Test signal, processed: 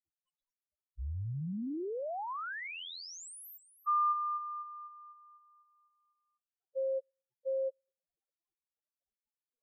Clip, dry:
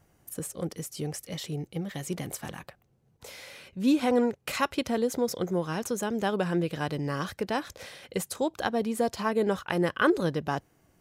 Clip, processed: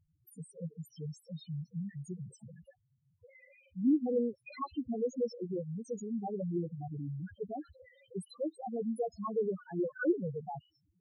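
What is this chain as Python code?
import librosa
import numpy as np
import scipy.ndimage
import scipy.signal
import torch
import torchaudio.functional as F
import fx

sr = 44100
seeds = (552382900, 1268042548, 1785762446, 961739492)

y = fx.echo_stepped(x, sr, ms=114, hz=3700.0, octaves=0.7, feedback_pct=70, wet_db=-8.5)
y = fx.dmg_crackle(y, sr, seeds[0], per_s=13.0, level_db=-45.0)
y = fx.spec_topn(y, sr, count=2)
y = y * 10.0 ** (-3.0 / 20.0)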